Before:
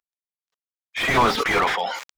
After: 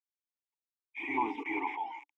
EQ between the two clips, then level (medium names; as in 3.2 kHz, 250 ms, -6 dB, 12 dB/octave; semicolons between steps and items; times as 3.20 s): vowel filter u; low-pass 9.6 kHz 12 dB/octave; static phaser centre 880 Hz, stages 8; 0.0 dB